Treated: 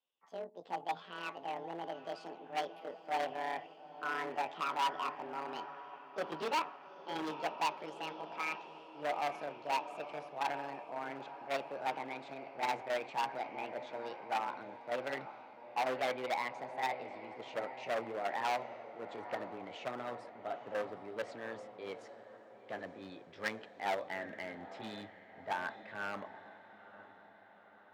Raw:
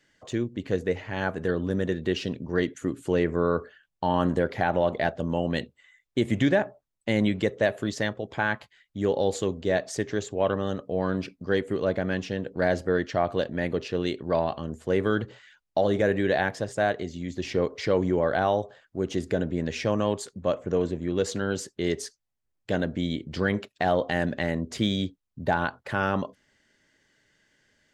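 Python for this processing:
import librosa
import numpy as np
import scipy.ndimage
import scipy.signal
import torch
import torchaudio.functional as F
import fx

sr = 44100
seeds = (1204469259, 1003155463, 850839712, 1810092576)

p1 = fx.pitch_glide(x, sr, semitones=10.0, runs='ending unshifted')
p2 = fx.level_steps(p1, sr, step_db=24)
p3 = p1 + (p2 * 10.0 ** (1.5 / 20.0))
p4 = scipy.signal.sosfilt(scipy.signal.butter(2, 2200.0, 'lowpass', fs=sr, output='sos'), p3)
p5 = p4 + fx.echo_diffused(p4, sr, ms=882, feedback_pct=67, wet_db=-13.0, dry=0)
p6 = np.clip(p5, -10.0 ** (-19.5 / 20.0), 10.0 ** (-19.5 / 20.0))
p7 = fx.highpass(p6, sr, hz=910.0, slope=6)
p8 = fx.band_widen(p7, sr, depth_pct=40)
y = p8 * 10.0 ** (-7.5 / 20.0)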